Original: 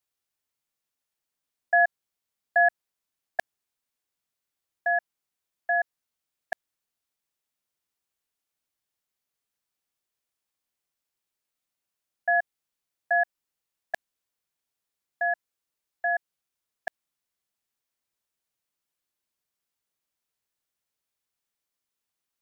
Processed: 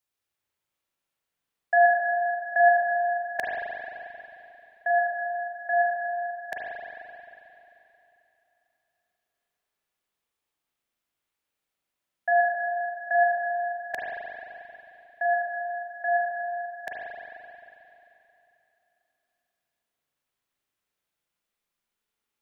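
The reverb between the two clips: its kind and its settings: spring tank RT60 3.1 s, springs 37/44 ms, chirp 35 ms, DRR -4.5 dB; gain -1.5 dB

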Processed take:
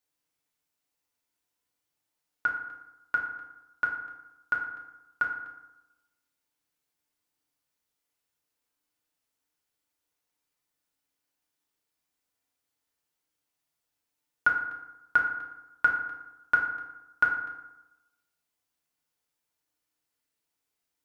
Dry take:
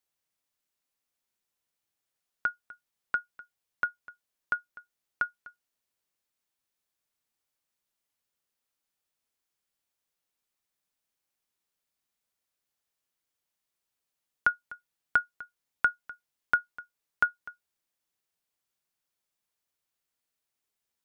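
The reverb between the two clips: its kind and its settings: FDN reverb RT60 0.97 s, low-frequency decay 1.05×, high-frequency decay 0.55×, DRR -1.5 dB; gain -1.5 dB

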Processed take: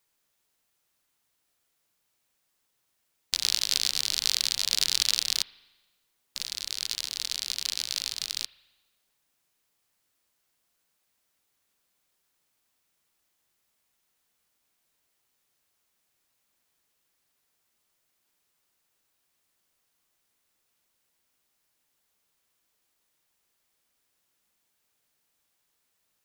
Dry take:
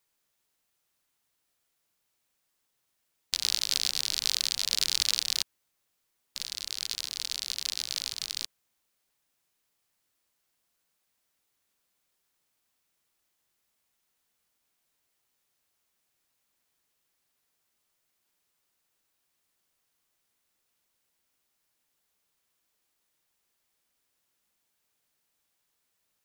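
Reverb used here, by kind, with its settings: spring tank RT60 1.2 s, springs 37 ms, chirp 50 ms, DRR 16.5 dB; gain +2 dB

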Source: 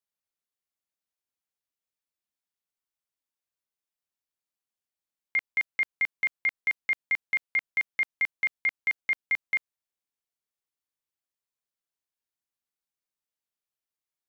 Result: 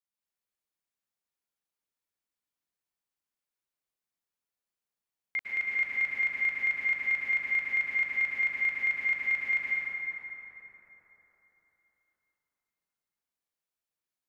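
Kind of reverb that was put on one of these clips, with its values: plate-style reverb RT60 4 s, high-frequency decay 0.45×, pre-delay 95 ms, DRR -6 dB; gain -6 dB

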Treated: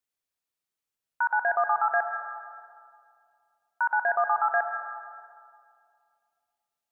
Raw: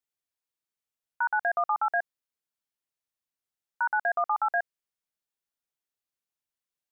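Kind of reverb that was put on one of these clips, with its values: digital reverb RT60 2.3 s, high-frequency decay 0.45×, pre-delay 60 ms, DRR 6.5 dB; gain +1.5 dB

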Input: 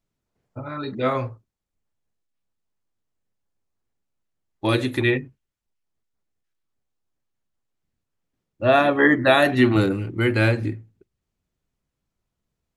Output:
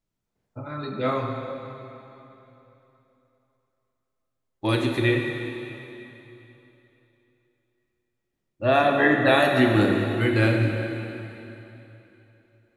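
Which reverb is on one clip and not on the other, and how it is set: plate-style reverb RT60 3.2 s, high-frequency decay 0.95×, DRR 2 dB; gain -3.5 dB

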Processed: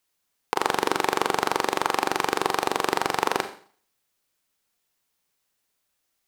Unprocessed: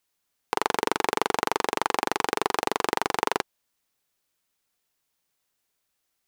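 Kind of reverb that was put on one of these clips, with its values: Schroeder reverb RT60 0.48 s, combs from 29 ms, DRR 8 dB; gain +1 dB

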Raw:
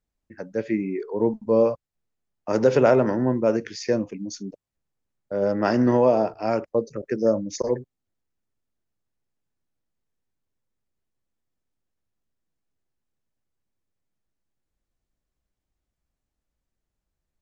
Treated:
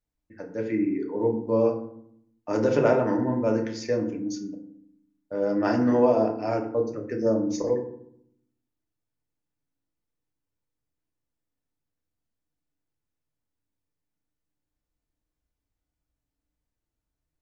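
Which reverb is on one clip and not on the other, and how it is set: FDN reverb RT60 0.68 s, low-frequency decay 1.55×, high-frequency decay 0.5×, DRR 1.5 dB; gain -5.5 dB

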